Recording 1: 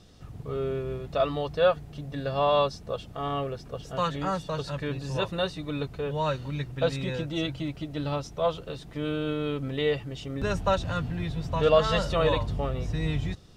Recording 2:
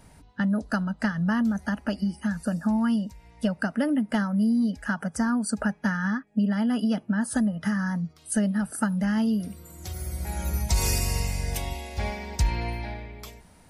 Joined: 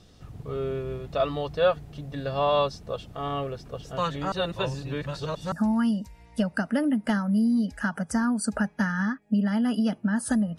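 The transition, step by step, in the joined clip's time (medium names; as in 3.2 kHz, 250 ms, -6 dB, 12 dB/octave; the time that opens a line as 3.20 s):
recording 1
4.32–5.52 s: reverse
5.52 s: go over to recording 2 from 2.57 s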